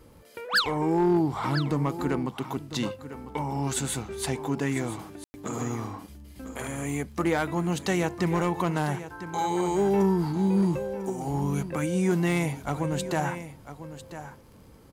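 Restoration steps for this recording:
clipped peaks rebuilt −16.5 dBFS
click removal
ambience match 0:05.24–0:05.34
echo removal 999 ms −13 dB

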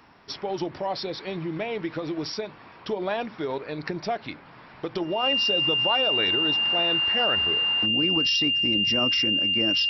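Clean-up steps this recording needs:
notch filter 2,800 Hz, Q 30

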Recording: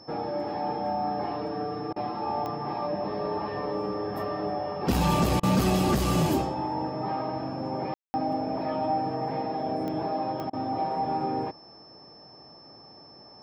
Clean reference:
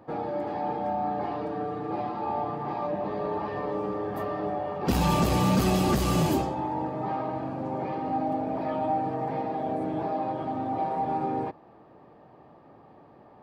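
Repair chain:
click removal
notch filter 5,300 Hz, Q 30
ambience match 0:07.94–0:08.14
repair the gap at 0:01.93/0:05.40/0:10.50, 30 ms

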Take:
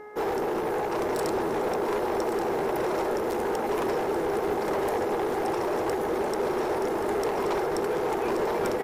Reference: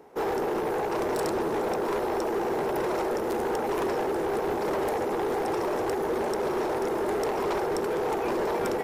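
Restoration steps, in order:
hum removal 420.4 Hz, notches 5
echo removal 1,129 ms −9.5 dB

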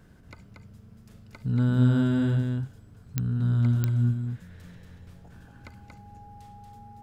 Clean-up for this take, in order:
click removal
notch filter 820 Hz, Q 30
echo removal 233 ms −4 dB

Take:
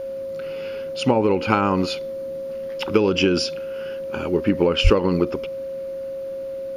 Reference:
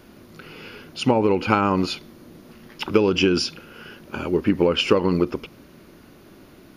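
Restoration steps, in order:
notch filter 540 Hz, Q 30
high-pass at the plosives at 0:04.83

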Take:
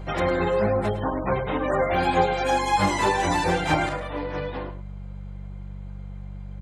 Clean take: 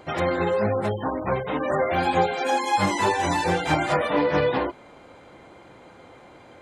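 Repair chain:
hum removal 48.2 Hz, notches 4
echo removal 107 ms −12 dB
level 0 dB, from 0:03.89 +9.5 dB

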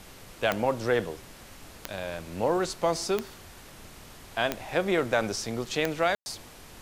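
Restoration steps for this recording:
click removal
ambience match 0:06.15–0:06.26
broadband denoise 25 dB, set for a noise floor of −48 dBFS

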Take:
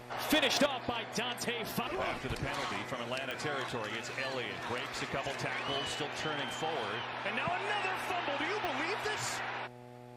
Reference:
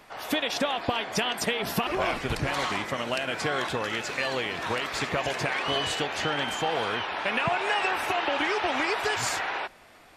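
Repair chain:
clipped peaks rebuilt −21 dBFS
click removal
hum removal 122.4 Hz, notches 7
level correction +8 dB, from 0:00.66

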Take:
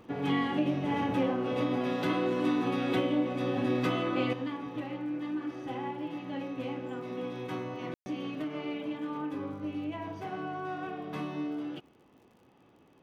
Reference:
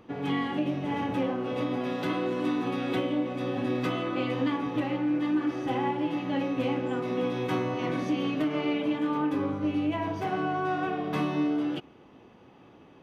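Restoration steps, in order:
click removal
ambience match 0:07.94–0:08.06
level 0 dB, from 0:04.33 +8 dB

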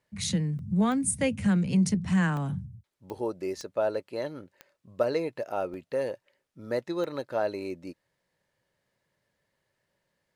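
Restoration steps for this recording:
click removal
repair the gap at 0:00.59/0:02.37/0:03.72/0:04.81/0:05.74/0:06.53/0:07.04, 1.2 ms

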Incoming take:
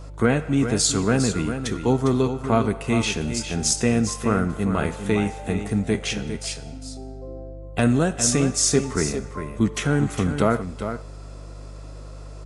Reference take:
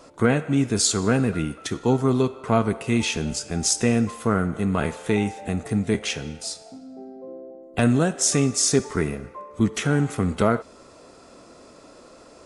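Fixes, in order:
hum removal 50.2 Hz, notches 3
echo removal 404 ms −9 dB

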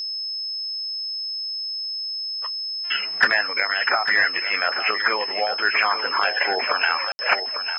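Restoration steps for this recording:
notch filter 5,200 Hz, Q 30
ambience match 0:07.12–0:07.19
echo removal 849 ms −9.5 dB

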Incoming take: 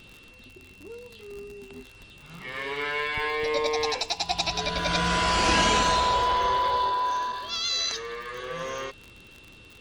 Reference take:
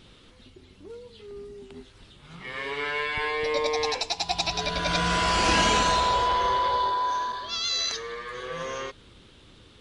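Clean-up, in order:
click removal
notch filter 2,700 Hz, Q 30

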